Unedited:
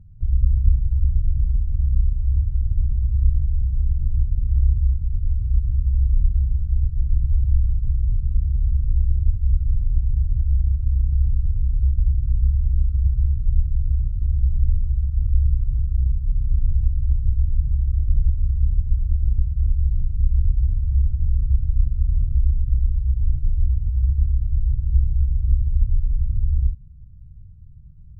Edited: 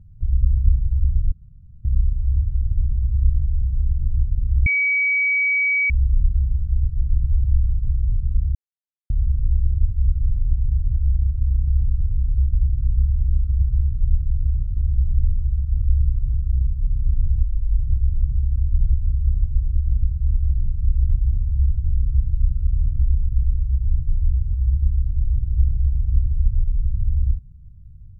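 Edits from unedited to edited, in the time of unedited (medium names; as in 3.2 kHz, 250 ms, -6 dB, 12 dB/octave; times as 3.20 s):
1.32–1.85 s: room tone
4.66–5.90 s: bleep 2.27 kHz -16 dBFS
8.55 s: insert silence 0.55 s
16.89–17.14 s: speed 73%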